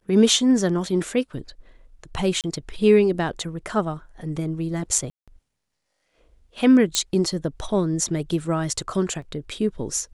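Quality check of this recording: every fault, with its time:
2.41–2.44 gap 28 ms
5.1–5.28 gap 0.176 s
6.95 pop -5 dBFS
9.22 gap 2.4 ms

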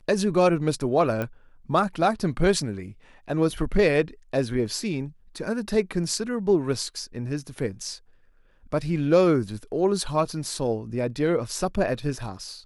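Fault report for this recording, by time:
1.22 pop -16 dBFS

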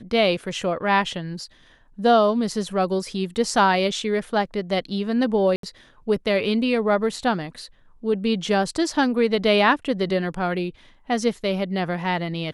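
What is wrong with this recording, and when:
5.56–5.63 gap 73 ms

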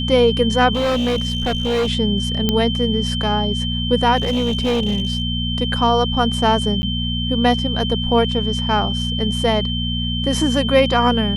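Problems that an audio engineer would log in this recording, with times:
hum 60 Hz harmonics 4 -23 dBFS
tone 3100 Hz -24 dBFS
0.73–1.89 clipped -15.5 dBFS
2.49 pop -4 dBFS
4.16–5.22 clipped -14.5 dBFS
6.82–6.83 gap 10 ms

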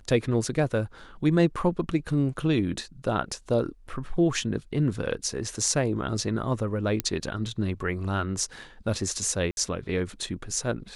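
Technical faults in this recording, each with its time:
7 pop -9 dBFS
9.51–9.57 gap 61 ms

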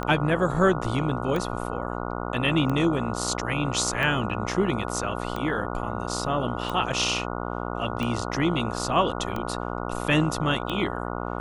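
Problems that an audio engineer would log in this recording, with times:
buzz 60 Hz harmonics 24 -31 dBFS
tick 45 rpm -17 dBFS

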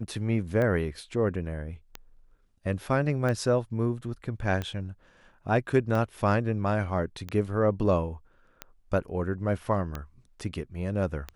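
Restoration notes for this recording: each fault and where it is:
tick 45 rpm -19 dBFS

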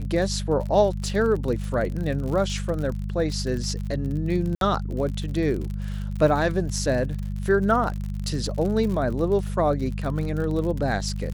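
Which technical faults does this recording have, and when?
crackle 52/s -30 dBFS
hum 50 Hz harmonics 4 -29 dBFS
4.55–4.61 gap 62 ms

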